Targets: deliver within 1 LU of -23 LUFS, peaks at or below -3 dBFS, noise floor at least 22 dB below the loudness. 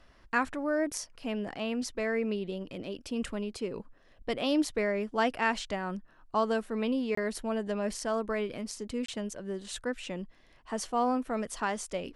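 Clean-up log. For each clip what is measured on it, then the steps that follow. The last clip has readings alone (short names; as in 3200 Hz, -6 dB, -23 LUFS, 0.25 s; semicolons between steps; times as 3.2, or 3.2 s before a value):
dropouts 2; longest dropout 24 ms; loudness -32.5 LUFS; peak -15.0 dBFS; loudness target -23.0 LUFS
-> interpolate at 7.15/9.06, 24 ms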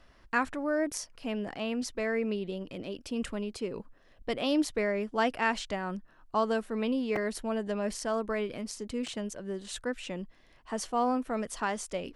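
dropouts 0; loudness -32.5 LUFS; peak -15.0 dBFS; loudness target -23.0 LUFS
-> gain +9.5 dB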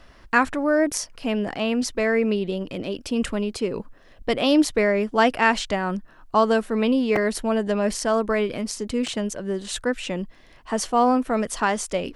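loudness -23.0 LUFS; peak -5.5 dBFS; noise floor -51 dBFS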